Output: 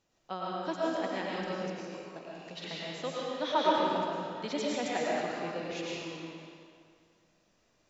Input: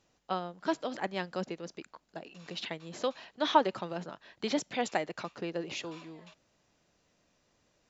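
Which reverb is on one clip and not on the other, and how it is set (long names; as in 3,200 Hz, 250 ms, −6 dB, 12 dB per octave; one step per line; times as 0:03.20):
comb and all-pass reverb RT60 2.1 s, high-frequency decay 0.85×, pre-delay 70 ms, DRR −5.5 dB
level −5.5 dB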